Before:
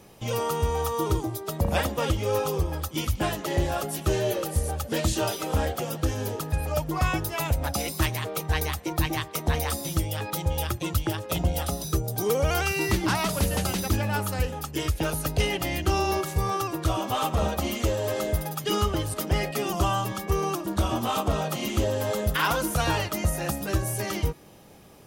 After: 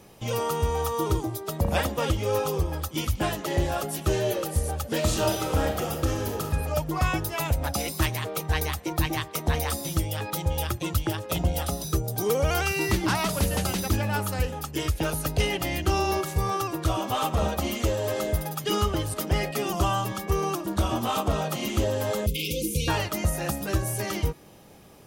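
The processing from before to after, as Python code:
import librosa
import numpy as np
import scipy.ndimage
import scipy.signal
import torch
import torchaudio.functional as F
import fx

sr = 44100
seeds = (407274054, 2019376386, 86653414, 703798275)

y = fx.reverb_throw(x, sr, start_s=4.96, length_s=1.55, rt60_s=0.95, drr_db=3.5)
y = fx.brickwall_bandstop(y, sr, low_hz=540.0, high_hz=2100.0, at=(22.26, 22.88))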